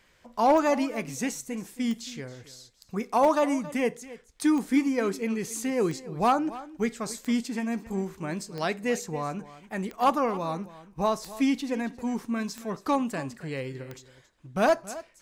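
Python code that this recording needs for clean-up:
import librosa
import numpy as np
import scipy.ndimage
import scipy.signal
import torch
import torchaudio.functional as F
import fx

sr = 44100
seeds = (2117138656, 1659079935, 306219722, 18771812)

y = fx.fix_declick_ar(x, sr, threshold=10.0)
y = fx.fix_echo_inverse(y, sr, delay_ms=274, level_db=-17.0)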